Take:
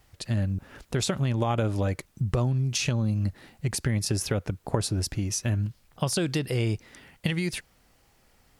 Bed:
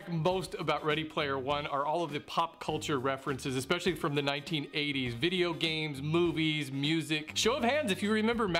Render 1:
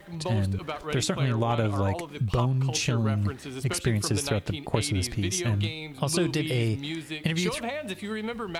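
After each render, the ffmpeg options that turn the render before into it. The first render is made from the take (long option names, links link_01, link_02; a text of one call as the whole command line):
ffmpeg -i in.wav -i bed.wav -filter_complex "[1:a]volume=-3.5dB[link_01];[0:a][link_01]amix=inputs=2:normalize=0" out.wav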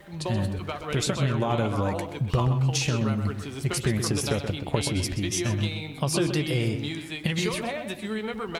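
ffmpeg -i in.wav -filter_complex "[0:a]asplit=2[link_01][link_02];[link_02]adelay=14,volume=-12dB[link_03];[link_01][link_03]amix=inputs=2:normalize=0,asplit=2[link_04][link_05];[link_05]adelay=128,lowpass=frequency=3700:poles=1,volume=-8dB,asplit=2[link_06][link_07];[link_07]adelay=128,lowpass=frequency=3700:poles=1,volume=0.3,asplit=2[link_08][link_09];[link_09]adelay=128,lowpass=frequency=3700:poles=1,volume=0.3,asplit=2[link_10][link_11];[link_11]adelay=128,lowpass=frequency=3700:poles=1,volume=0.3[link_12];[link_04][link_06][link_08][link_10][link_12]amix=inputs=5:normalize=0" out.wav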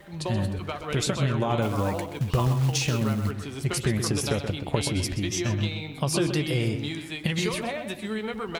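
ffmpeg -i in.wav -filter_complex "[0:a]asettb=1/sr,asplit=3[link_01][link_02][link_03];[link_01]atrim=end=1.624[link_04];[link_02]atrim=start=1.62:end=3.31,asetpts=PTS-STARTPTS,afade=type=in:duration=0.004:curve=qsin,afade=type=out:start_time=1.686:duration=0.004:curve=qsin,acrusher=bits=5:mode=log:mix=0:aa=0.000001[link_05];[link_03]atrim=start=3.306[link_06];[link_04][link_05]acrossfade=duration=0.004:curve1=hsin:curve2=qsin[link_07];[link_07][link_06]acrossfade=duration=0.004:curve1=qsin:curve2=hsin,asettb=1/sr,asplit=3[link_08][link_09][link_10];[link_08]atrim=end=5.314[link_11];[link_09]atrim=start=5.31:end=5.95,asetpts=PTS-STARTPTS,afade=type=in:duration=0.004:curve=qsin,afade=type=out:start_time=0.636:duration=0.004:curve=qsin,equalizer=frequency=9900:width_type=o:width=0.35:gain=-14.5[link_12];[link_10]atrim=start=5.946[link_13];[link_11][link_12]acrossfade=duration=0.004:curve1=hsin:curve2=qsin[link_14];[link_14][link_13]acrossfade=duration=0.004:curve1=qsin:curve2=hsin" out.wav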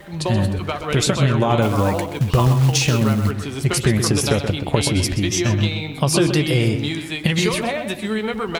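ffmpeg -i in.wav -af "volume=8dB,alimiter=limit=-3dB:level=0:latency=1" out.wav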